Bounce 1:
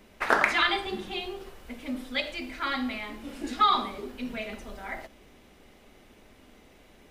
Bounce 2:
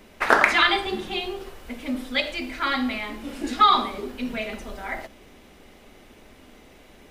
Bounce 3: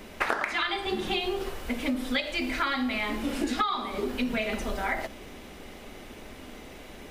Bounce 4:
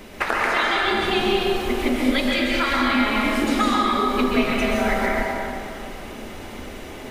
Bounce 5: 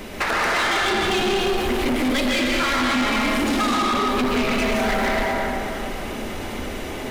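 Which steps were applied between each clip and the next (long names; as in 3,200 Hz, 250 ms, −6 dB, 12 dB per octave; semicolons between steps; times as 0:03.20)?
mains-hum notches 50/100/150/200 Hz; level +5.5 dB
downward compressor 16 to 1, threshold −30 dBFS, peak gain reduction 20 dB; level +5.5 dB
dense smooth reverb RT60 2.6 s, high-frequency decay 0.55×, pre-delay 115 ms, DRR −4 dB; level +3.5 dB
soft clipping −24.5 dBFS, distortion −8 dB; level +6.5 dB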